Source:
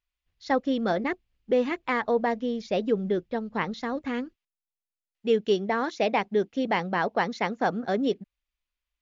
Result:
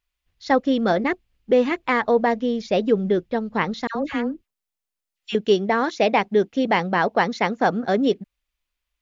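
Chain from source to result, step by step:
0:03.87–0:05.35: all-pass dispersion lows, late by 83 ms, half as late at 1,300 Hz
level +6 dB

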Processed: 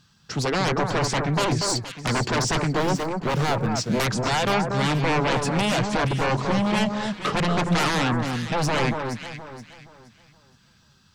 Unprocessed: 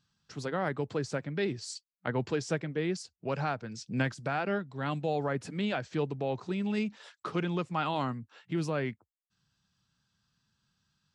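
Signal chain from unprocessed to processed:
0:02.70–0:03.67: running median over 25 samples
sine wavefolder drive 16 dB, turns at −16 dBFS
delay that swaps between a low-pass and a high-pass 236 ms, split 1,600 Hz, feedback 54%, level −4 dB
level −3.5 dB

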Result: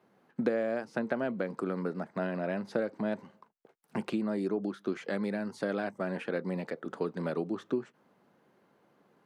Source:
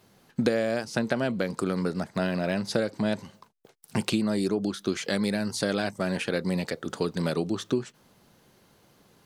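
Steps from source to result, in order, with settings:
three-way crossover with the lows and the highs turned down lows −22 dB, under 160 Hz, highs −17 dB, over 2,200 Hz
level −4 dB

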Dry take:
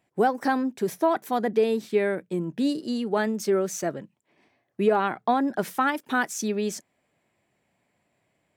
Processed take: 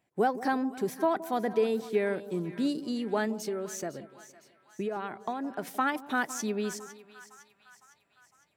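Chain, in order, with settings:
0:03.31–0:05.67: downward compressor 4 to 1, threshold −27 dBFS, peak gain reduction 10 dB
echo with a time of its own for lows and highs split 930 Hz, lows 168 ms, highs 507 ms, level −15 dB
level −4.5 dB

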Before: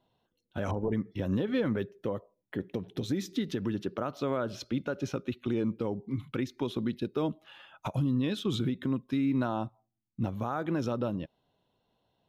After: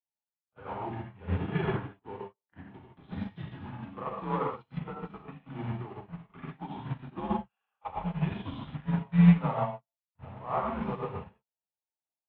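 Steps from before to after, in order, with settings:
one-sided soft clipper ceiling −20.5 dBFS
low shelf with overshoot 130 Hz −7.5 dB, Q 1.5
in parallel at −4.5 dB: bit-depth reduction 6 bits, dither none
on the sum: graphic EQ with 10 bands 125 Hz −6 dB, 500 Hz −3 dB, 1,000 Hz +11 dB
echo ahead of the sound 37 ms −12 dB
reverb whose tail is shaped and stops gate 180 ms flat, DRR −3.5 dB
single-sideband voice off tune −100 Hz 160–3,200 Hz
expander for the loud parts 2.5 to 1, over −40 dBFS

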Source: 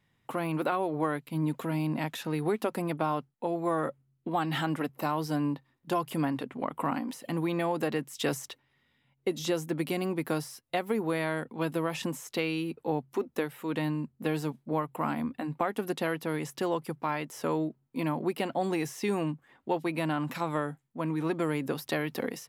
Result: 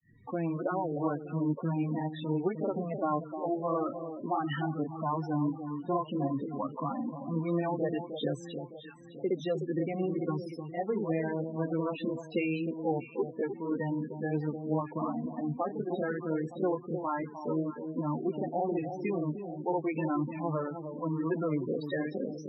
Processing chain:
upward compression, threshold −43 dBFS
granular cloud 247 ms, grains 14 per second, spray 37 ms, pitch spread up and down by 0 semitones
delay that swaps between a low-pass and a high-pass 305 ms, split 1,000 Hz, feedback 64%, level −8 dB
spectral peaks only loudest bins 16
level +2.5 dB

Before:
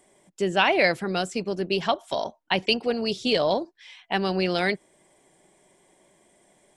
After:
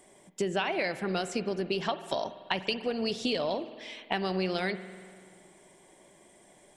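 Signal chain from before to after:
downward compressor, threshold −30 dBFS, peak gain reduction 14.5 dB
convolution reverb RT60 2.0 s, pre-delay 48 ms, DRR 12 dB
level +2.5 dB

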